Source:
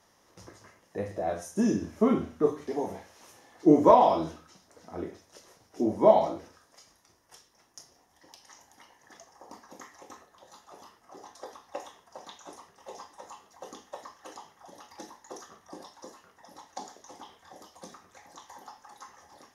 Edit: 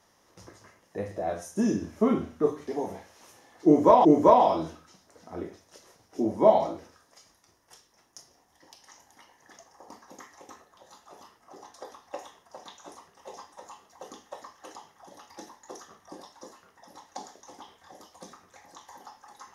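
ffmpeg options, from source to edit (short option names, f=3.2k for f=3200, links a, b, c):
-filter_complex "[0:a]asplit=2[a][b];[a]atrim=end=4.052[c];[b]atrim=start=3.658[d];[c][d]acrossfade=d=0.004:c1=hsin:c2=hsin"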